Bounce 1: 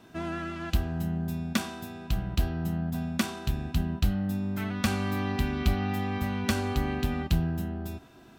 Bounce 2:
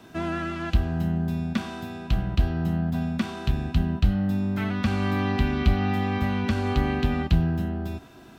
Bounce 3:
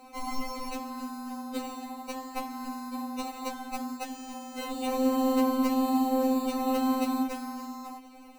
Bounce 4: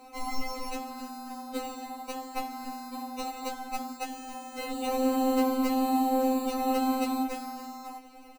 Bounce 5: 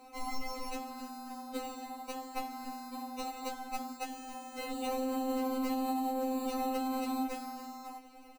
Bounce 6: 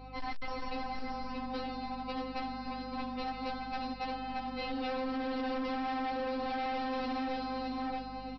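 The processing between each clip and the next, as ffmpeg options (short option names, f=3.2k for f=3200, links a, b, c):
-filter_complex "[0:a]acrossover=split=220[a][b];[b]alimiter=limit=-22dB:level=0:latency=1:release=213[c];[a][c]amix=inputs=2:normalize=0,acrossover=split=4700[d][e];[e]acompressor=threshold=-59dB:ratio=4:attack=1:release=60[f];[d][f]amix=inputs=2:normalize=0,volume=5dB"
-af "tiltshelf=f=970:g=-9.5,acrusher=samples=26:mix=1:aa=0.000001,afftfilt=real='re*3.46*eq(mod(b,12),0)':imag='im*3.46*eq(mod(b,12),0)':win_size=2048:overlap=0.75"
-filter_complex "[0:a]asplit=2[a][b];[b]adelay=14,volume=-6dB[c];[a][c]amix=inputs=2:normalize=0"
-af "alimiter=limit=-22dB:level=0:latency=1:release=62,volume=-4dB"
-af "aeval=exprs='val(0)+0.00224*(sin(2*PI*50*n/s)+sin(2*PI*2*50*n/s)/2+sin(2*PI*3*50*n/s)/3+sin(2*PI*4*50*n/s)/4+sin(2*PI*5*50*n/s)/5)':c=same,aecho=1:1:625|1250|1875|2500:0.501|0.185|0.0686|0.0254,aresample=11025,asoftclip=type=hard:threshold=-37dB,aresample=44100,volume=4dB"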